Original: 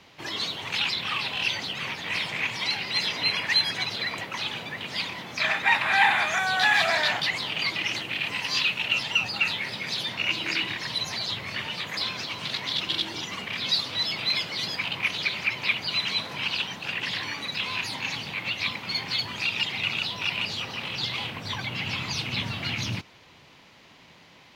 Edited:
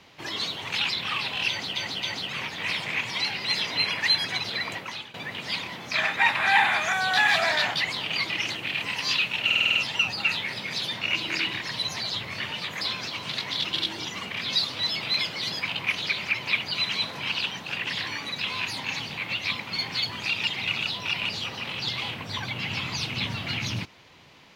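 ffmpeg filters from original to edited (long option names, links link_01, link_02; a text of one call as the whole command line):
ffmpeg -i in.wav -filter_complex "[0:a]asplit=10[link_01][link_02][link_03][link_04][link_05][link_06][link_07][link_08][link_09][link_10];[link_01]atrim=end=1.762[link_11];[link_02]atrim=start=1.488:end=1.762[link_12];[link_03]atrim=start=1.488:end=4.6,asetpts=PTS-STARTPTS,afade=type=out:start_time=2.742:duration=0.37:silence=0.133352[link_13];[link_04]atrim=start=4.6:end=8.962,asetpts=PTS-STARTPTS,afade=type=in:duration=0.004:curve=hsin:silence=0.133352[link_14];[link_05]atrim=start=8.908:end=8.962[link_15];[link_06]atrim=start=8.908:end=8.962[link_16];[link_07]atrim=start=8.908:end=8.962[link_17];[link_08]atrim=start=8.908:end=8.962[link_18];[link_09]atrim=start=8.908:end=8.962[link_19];[link_10]atrim=start=8.908[link_20];[link_11][link_12]acrossfade=duration=0.004:curve1=hsin:curve2=hsin[link_21];[link_13][link_14]concat=n=2:v=0:a=1[link_22];[link_21][link_22]acrossfade=duration=0.004:curve1=hsin:curve2=hsin[link_23];[link_23][link_15]acrossfade=duration=0.004:curve1=hsin:curve2=hsin[link_24];[link_24][link_16]acrossfade=duration=0.004:curve1=hsin:curve2=hsin[link_25];[link_25][link_17]acrossfade=duration=0.004:curve1=hsin:curve2=hsin[link_26];[link_26][link_18]acrossfade=duration=0.004:curve1=hsin:curve2=hsin[link_27];[link_27][link_19]acrossfade=duration=0.004:curve1=hsin:curve2=hsin[link_28];[link_28][link_20]acrossfade=duration=0.004:curve1=hsin:curve2=hsin" out.wav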